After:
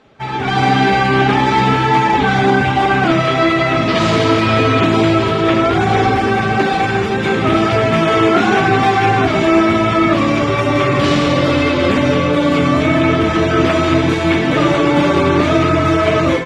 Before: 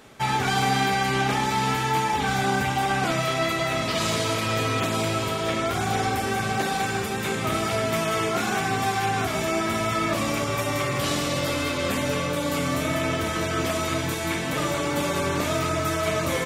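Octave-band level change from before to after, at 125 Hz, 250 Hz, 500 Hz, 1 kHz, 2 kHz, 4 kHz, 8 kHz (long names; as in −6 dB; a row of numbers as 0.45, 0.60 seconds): +11.5, +14.5, +12.0, +10.5, +10.0, +7.0, −3.0 decibels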